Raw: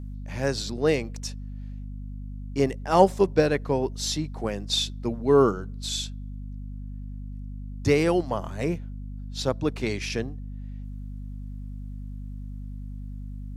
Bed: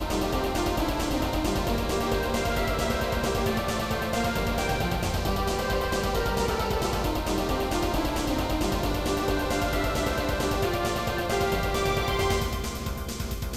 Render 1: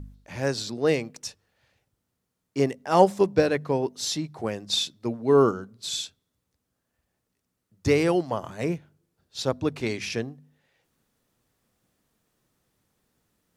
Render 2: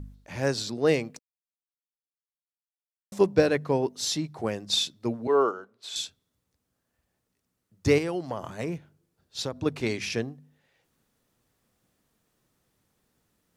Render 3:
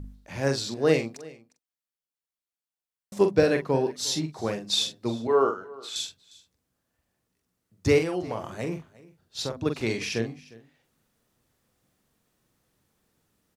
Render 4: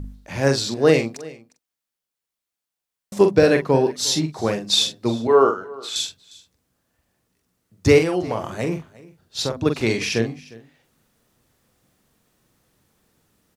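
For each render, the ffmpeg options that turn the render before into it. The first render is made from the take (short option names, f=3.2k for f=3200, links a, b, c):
-af "bandreject=f=50:t=h:w=4,bandreject=f=100:t=h:w=4,bandreject=f=150:t=h:w=4,bandreject=f=200:t=h:w=4,bandreject=f=250:t=h:w=4"
-filter_complex "[0:a]asettb=1/sr,asplit=3[a][b][c];[a]atrim=end=5.274[d];[b]atrim=start=5.27:end=5.96,asetpts=PTS-STARTPTS,afade=t=in:d=0.004:c=qsin,afade=t=out:st=0.686:d=0.004:c=qsin,acrossover=split=380 3100:gain=0.0708 1 0.251[e][f][g];[e][f][g]amix=inputs=3:normalize=0[h];[c]atrim=start=5.956[i];[d][h]acrossfade=d=0.004:c1=hsin:c2=qsin[j];[j][i]acrossfade=d=0.004:c1=qsin:c2=hsin,asettb=1/sr,asplit=3[k][l][m];[k]atrim=end=7.984[n];[l]atrim=start=7.98:end=9.66,asetpts=PTS-STARTPTS,afade=t=in:d=0.004:c=qsin,afade=t=out:st=1.676:d=0.004:c=qsin,acompressor=threshold=-26dB:ratio=6:attack=3.2:release=140:knee=1:detection=peak[o];[m]atrim=start=9.656[p];[n][o]acrossfade=d=0.004:c1=hsin:c2=qsin[q];[q][p]acrossfade=d=0.004:c1=qsin:c2=hsin,asplit=3[r][s][t];[r]atrim=end=1.19,asetpts=PTS-STARTPTS,afade=t=out:st=1.186:d=0.004:c=hsin[u];[s]atrim=start=1.19:end=3.12,asetpts=PTS-STARTPTS,volume=0[v];[t]atrim=start=3.12,asetpts=PTS-STARTPTS,afade=t=in:d=0.004:c=hsin[w];[u][v][w]concat=n=3:v=0:a=1"
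-filter_complex "[0:a]asplit=2[a][b];[b]adelay=44,volume=-7dB[c];[a][c]amix=inputs=2:normalize=0,aecho=1:1:355:0.0841"
-af "volume=7dB,alimiter=limit=-3dB:level=0:latency=1"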